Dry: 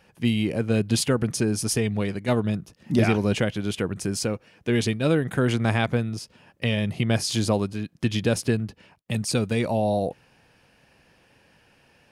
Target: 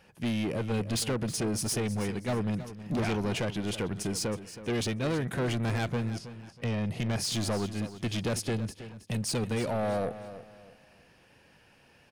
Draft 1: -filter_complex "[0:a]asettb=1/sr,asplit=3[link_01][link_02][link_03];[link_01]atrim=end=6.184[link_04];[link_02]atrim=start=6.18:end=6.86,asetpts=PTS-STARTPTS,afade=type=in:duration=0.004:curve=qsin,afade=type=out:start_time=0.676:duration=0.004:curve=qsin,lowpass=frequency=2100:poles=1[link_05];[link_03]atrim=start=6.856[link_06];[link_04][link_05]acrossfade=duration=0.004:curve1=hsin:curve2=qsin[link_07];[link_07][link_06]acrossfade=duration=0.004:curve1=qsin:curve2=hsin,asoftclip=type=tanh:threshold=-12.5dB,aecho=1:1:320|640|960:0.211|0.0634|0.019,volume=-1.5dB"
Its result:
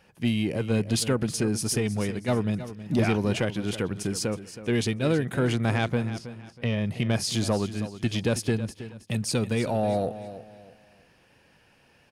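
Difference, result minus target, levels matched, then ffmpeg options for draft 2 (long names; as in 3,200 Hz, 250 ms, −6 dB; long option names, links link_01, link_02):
soft clipping: distortion −13 dB
-filter_complex "[0:a]asettb=1/sr,asplit=3[link_01][link_02][link_03];[link_01]atrim=end=6.184[link_04];[link_02]atrim=start=6.18:end=6.86,asetpts=PTS-STARTPTS,afade=type=in:duration=0.004:curve=qsin,afade=type=out:start_time=0.676:duration=0.004:curve=qsin,lowpass=frequency=2100:poles=1[link_05];[link_03]atrim=start=6.856[link_06];[link_04][link_05]acrossfade=duration=0.004:curve1=hsin:curve2=qsin[link_07];[link_07][link_06]acrossfade=duration=0.004:curve1=qsin:curve2=hsin,asoftclip=type=tanh:threshold=-24.5dB,aecho=1:1:320|640|960:0.211|0.0634|0.019,volume=-1.5dB"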